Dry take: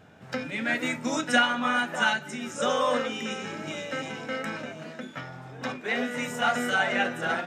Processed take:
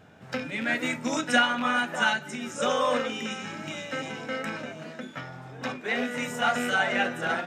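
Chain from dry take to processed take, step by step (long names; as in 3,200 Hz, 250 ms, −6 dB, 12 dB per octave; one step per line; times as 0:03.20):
loose part that buzzes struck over −34 dBFS, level −26 dBFS
0:03.27–0:03.93: parametric band 450 Hz −9 dB 0.54 octaves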